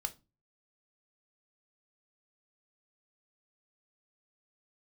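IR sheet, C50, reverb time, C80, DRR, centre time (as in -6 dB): 19.0 dB, 0.30 s, 27.5 dB, 7.5 dB, 5 ms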